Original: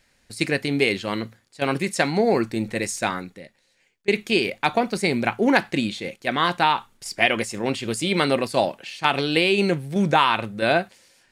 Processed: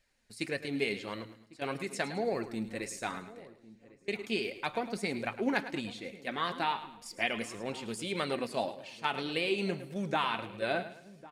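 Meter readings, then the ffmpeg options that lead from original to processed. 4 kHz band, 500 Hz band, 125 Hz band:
−12.0 dB, −12.0 dB, −14.0 dB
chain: -filter_complex "[0:a]asplit=2[link_01][link_02];[link_02]aecho=0:1:107|214|321|428:0.224|0.0828|0.0306|0.0113[link_03];[link_01][link_03]amix=inputs=2:normalize=0,flanger=delay=1.6:depth=3.2:regen=48:speed=1.7:shape=sinusoidal,asplit=2[link_04][link_05];[link_05]adelay=1101,lowpass=frequency=970:poles=1,volume=-18dB,asplit=2[link_06][link_07];[link_07]adelay=1101,lowpass=frequency=970:poles=1,volume=0.35,asplit=2[link_08][link_09];[link_09]adelay=1101,lowpass=frequency=970:poles=1,volume=0.35[link_10];[link_06][link_08][link_10]amix=inputs=3:normalize=0[link_11];[link_04][link_11]amix=inputs=2:normalize=0,volume=-8.5dB"

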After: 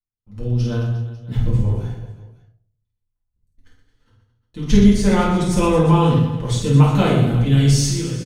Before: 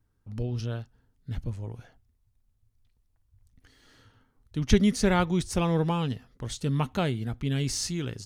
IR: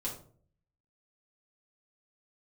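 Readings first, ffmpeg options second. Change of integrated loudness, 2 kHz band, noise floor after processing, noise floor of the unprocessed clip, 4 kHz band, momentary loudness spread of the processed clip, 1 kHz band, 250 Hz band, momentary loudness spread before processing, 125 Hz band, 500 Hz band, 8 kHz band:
+11.5 dB, +6.0 dB, −77 dBFS, −71 dBFS, +7.5 dB, 12 LU, +10.0 dB, +11.0 dB, 15 LU, +13.5 dB, +10.0 dB, +7.5 dB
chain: -filter_complex "[0:a]agate=range=-26dB:threshold=-54dB:ratio=16:detection=peak,dynaudnorm=framelen=230:gausssize=5:maxgain=12dB,aecho=1:1:50|120|218|355.2|547.3:0.631|0.398|0.251|0.158|0.1[link_01];[1:a]atrim=start_sample=2205[link_02];[link_01][link_02]afir=irnorm=-1:irlink=0,volume=-4.5dB"

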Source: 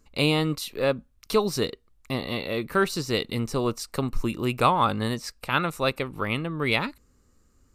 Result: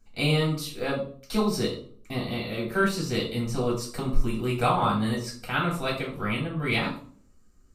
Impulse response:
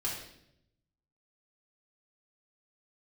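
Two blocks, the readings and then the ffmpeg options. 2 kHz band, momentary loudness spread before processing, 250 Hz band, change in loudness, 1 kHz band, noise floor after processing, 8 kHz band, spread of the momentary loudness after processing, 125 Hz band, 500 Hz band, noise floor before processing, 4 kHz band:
−1.0 dB, 8 LU, +0.5 dB, −1.0 dB, −2.5 dB, −56 dBFS, −1.5 dB, 8 LU, +1.5 dB, −2.5 dB, −63 dBFS, −2.0 dB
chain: -filter_complex "[1:a]atrim=start_sample=2205,asetrate=83790,aresample=44100[link_01];[0:a][link_01]afir=irnorm=-1:irlink=0"

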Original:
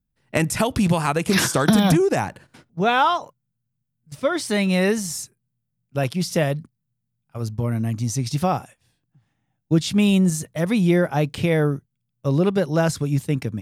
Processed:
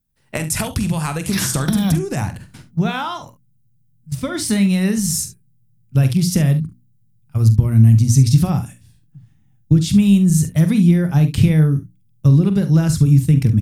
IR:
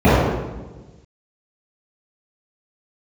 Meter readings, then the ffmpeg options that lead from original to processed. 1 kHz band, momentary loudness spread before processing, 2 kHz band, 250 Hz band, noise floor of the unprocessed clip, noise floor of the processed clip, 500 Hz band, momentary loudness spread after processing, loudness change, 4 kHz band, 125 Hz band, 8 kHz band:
−6.0 dB, 11 LU, −3.5 dB, +5.0 dB, −78 dBFS, −56 dBFS, −6.0 dB, 14 LU, +5.0 dB, 0.0 dB, +10.0 dB, +5.5 dB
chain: -filter_complex "[0:a]acompressor=threshold=-23dB:ratio=6,highshelf=frequency=5800:gain=9.5,bandreject=frequency=60:width_type=h:width=6,bandreject=frequency=120:width_type=h:width=6,bandreject=frequency=180:width_type=h:width=6,bandreject=frequency=240:width_type=h:width=6,bandreject=frequency=300:width_type=h:width=6,asplit=2[link_01][link_02];[link_02]aecho=0:1:45|70:0.282|0.178[link_03];[link_01][link_03]amix=inputs=2:normalize=0,asubboost=boost=9:cutoff=180,volume=2.5dB"

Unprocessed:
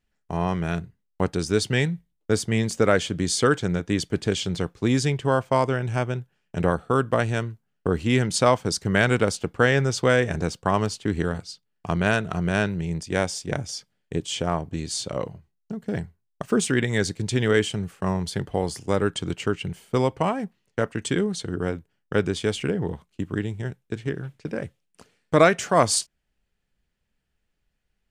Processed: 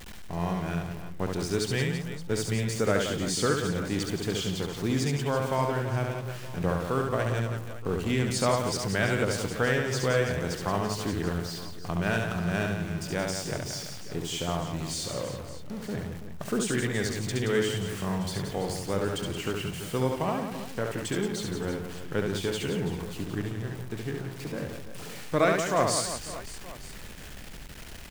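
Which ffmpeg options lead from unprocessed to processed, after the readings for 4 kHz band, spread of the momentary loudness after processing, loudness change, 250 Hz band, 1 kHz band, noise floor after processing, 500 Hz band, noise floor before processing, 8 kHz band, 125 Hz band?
−3.5 dB, 11 LU, −5.0 dB, −5.0 dB, −5.5 dB, −41 dBFS, −5.0 dB, −75 dBFS, −3.5 dB, −4.0 dB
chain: -af "aeval=exprs='val(0)+0.5*0.0335*sgn(val(0))':channel_layout=same,aecho=1:1:70|175|332.5|568.8|923.1:0.631|0.398|0.251|0.158|0.1,volume=-8.5dB"

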